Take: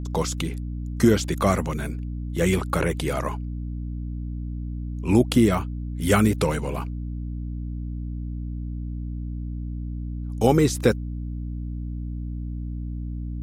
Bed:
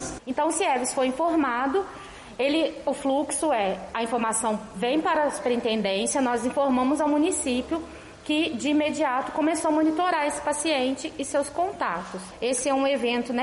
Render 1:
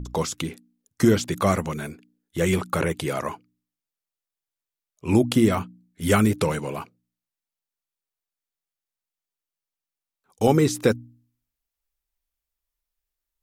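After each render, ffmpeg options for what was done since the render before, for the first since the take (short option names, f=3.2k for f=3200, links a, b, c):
-af "bandreject=f=60:t=h:w=4,bandreject=f=120:t=h:w=4,bandreject=f=180:t=h:w=4,bandreject=f=240:t=h:w=4,bandreject=f=300:t=h:w=4"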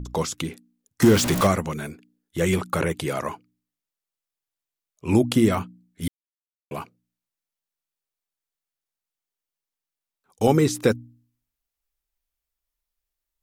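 -filter_complex "[0:a]asettb=1/sr,asplit=3[a][b][c];[a]atrim=end=1.024[d];[b]atrim=start=1.02:end=1.47,asetpts=PTS-STARTPTS,afade=t=in:d=0.004:c=qsin,afade=t=out:st=0.446:d=0.004:c=qsin,aeval=exprs='val(0)+0.5*0.1*sgn(val(0))':c=same[e];[c]atrim=start=1.466[f];[d][e]acrossfade=d=0.004:c1=hsin:c2=qsin[g];[g][f]acrossfade=d=0.004:c1=qsin:c2=hsin,asplit=3[h][i][j];[h]atrim=end=6.08,asetpts=PTS-STARTPTS,afade=t=out:st=6.076:d=0.004:c=hsin[k];[i]atrim=start=6.08:end=6.71,asetpts=PTS-STARTPTS,volume=0[l];[j]atrim=start=6.71,asetpts=PTS-STARTPTS,afade=t=in:d=0.004:c=hsin[m];[k][l][m]concat=n=3:v=0:a=1"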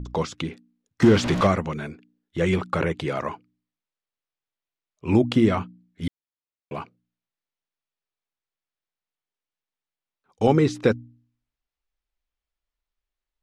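-af "lowpass=4k"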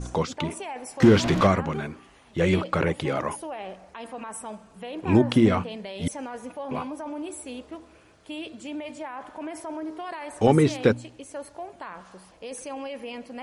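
-filter_complex "[1:a]volume=-12dB[a];[0:a][a]amix=inputs=2:normalize=0"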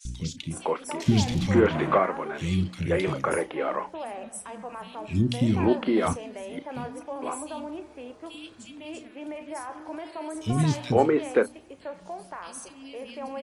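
-filter_complex "[0:a]asplit=2[a][b];[b]adelay=33,volume=-13dB[c];[a][c]amix=inputs=2:normalize=0,acrossover=split=260|2600[d][e][f];[d]adelay=50[g];[e]adelay=510[h];[g][h][f]amix=inputs=3:normalize=0"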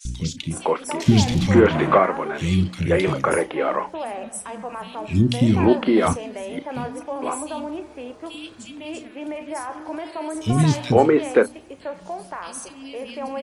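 -af "volume=6dB,alimiter=limit=-3dB:level=0:latency=1"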